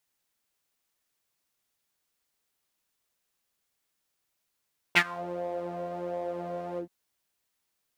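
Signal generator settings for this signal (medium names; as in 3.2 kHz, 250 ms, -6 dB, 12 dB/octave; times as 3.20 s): synth patch with pulse-width modulation F3, detune 27 cents, noise -8 dB, filter bandpass, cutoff 220 Hz, Q 3.8, filter envelope 3.5 oct, attack 21 ms, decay 0.06 s, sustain -23 dB, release 0.10 s, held 1.83 s, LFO 1.4 Hz, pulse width 27%, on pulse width 15%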